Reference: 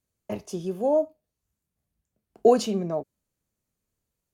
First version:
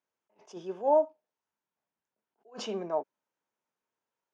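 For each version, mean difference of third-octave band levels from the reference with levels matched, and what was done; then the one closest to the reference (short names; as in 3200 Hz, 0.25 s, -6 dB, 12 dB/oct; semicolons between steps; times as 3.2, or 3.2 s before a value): 7.0 dB: speaker cabinet 380–5500 Hz, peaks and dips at 920 Hz +10 dB, 1500 Hz +5 dB, 4300 Hz -10 dB; attack slew limiter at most 250 dB/s; gain -2 dB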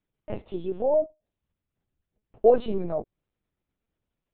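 5.0 dB: dynamic EQ 2900 Hz, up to -5 dB, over -41 dBFS, Q 0.78; LPC vocoder at 8 kHz pitch kept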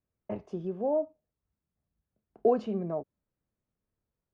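3.5 dB: LPF 1700 Hz 12 dB/oct; in parallel at -1.5 dB: compressor, threshold -29 dBFS, peak gain reduction 15.5 dB; on the sum: gain -8 dB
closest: third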